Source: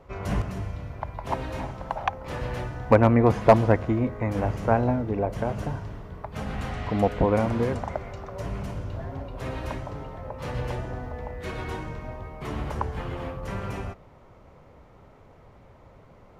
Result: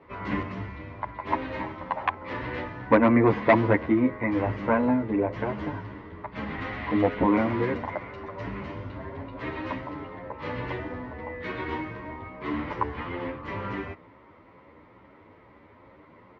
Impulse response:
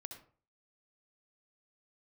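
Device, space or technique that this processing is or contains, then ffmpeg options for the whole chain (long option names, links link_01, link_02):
barber-pole flanger into a guitar amplifier: -filter_complex "[0:a]asplit=2[link_01][link_02];[link_02]adelay=10.1,afreqshift=2.3[link_03];[link_01][link_03]amix=inputs=2:normalize=1,asoftclip=type=tanh:threshold=-11dB,highpass=100,equalizer=frequency=140:width_type=q:width=4:gain=-9,equalizer=frequency=300:width_type=q:width=4:gain=8,equalizer=frequency=730:width_type=q:width=4:gain=-6,equalizer=frequency=1000:width_type=q:width=4:gain=6,equalizer=frequency=2000:width_type=q:width=4:gain=9,lowpass=frequency=4100:width=0.5412,lowpass=frequency=4100:width=1.3066,volume=2.5dB"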